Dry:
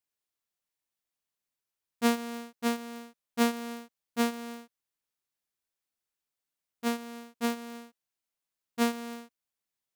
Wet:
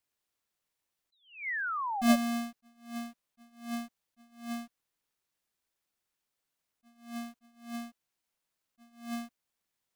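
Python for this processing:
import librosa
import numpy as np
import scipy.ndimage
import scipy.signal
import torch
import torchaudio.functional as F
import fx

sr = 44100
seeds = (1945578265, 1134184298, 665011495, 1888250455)

y = fx.halfwave_hold(x, sr)
y = fx.spec_paint(y, sr, seeds[0], shape='fall', start_s=1.12, length_s=1.04, low_hz=570.0, high_hz=4100.0, level_db=-35.0)
y = fx.attack_slew(y, sr, db_per_s=140.0)
y = F.gain(torch.from_numpy(y), 1.5).numpy()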